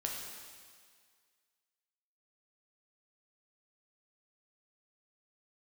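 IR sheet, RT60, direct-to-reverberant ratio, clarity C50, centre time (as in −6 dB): 1.9 s, −1.0 dB, 2.0 dB, 81 ms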